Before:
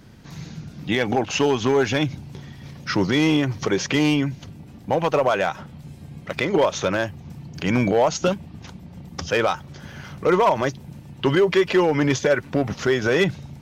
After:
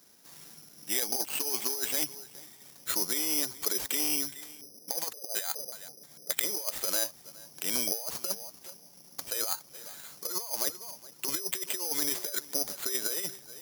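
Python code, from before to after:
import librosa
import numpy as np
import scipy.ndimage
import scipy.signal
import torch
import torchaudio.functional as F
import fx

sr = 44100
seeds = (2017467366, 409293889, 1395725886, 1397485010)

y = scipy.signal.sosfilt(scipy.signal.butter(2, 380.0, 'highpass', fs=sr, output='sos'), x)
y = fx.echo_feedback(y, sr, ms=417, feedback_pct=15, wet_db=-22.0)
y = fx.filter_lfo_lowpass(y, sr, shape='square', hz=fx.line((4.27, 1.4), (6.41, 4.2)), low_hz=490.0, high_hz=2000.0, q=3.0, at=(4.27, 6.41), fade=0.02)
y = fx.over_compress(y, sr, threshold_db=-23.0, ratio=-0.5)
y = fx.high_shelf(y, sr, hz=5600.0, db=-11.0)
y = (np.kron(y[::8], np.eye(8)[0]) * 8)[:len(y)]
y = F.gain(torch.from_numpy(y), -15.5).numpy()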